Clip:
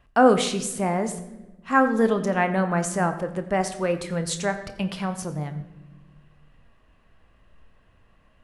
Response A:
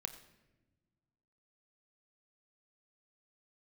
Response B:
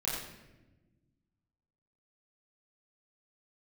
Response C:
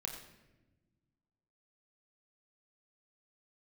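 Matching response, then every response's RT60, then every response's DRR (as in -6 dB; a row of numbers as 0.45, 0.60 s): A; not exponential, not exponential, not exponential; 8.0, -8.0, 1.0 dB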